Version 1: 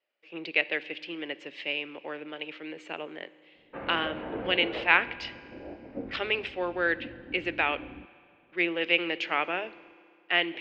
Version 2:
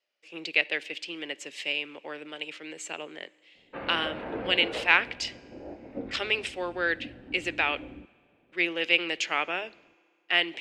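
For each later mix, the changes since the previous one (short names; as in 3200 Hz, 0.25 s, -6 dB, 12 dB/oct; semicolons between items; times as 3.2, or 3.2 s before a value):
speech: send -11.0 dB; master: remove air absorption 300 m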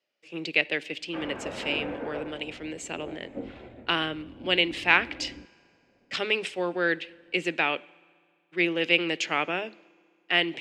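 speech: add bell 110 Hz +13.5 dB 3 oct; background: entry -2.60 s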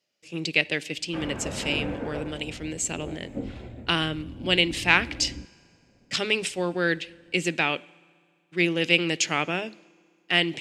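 master: remove three-band isolator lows -12 dB, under 270 Hz, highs -14 dB, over 3700 Hz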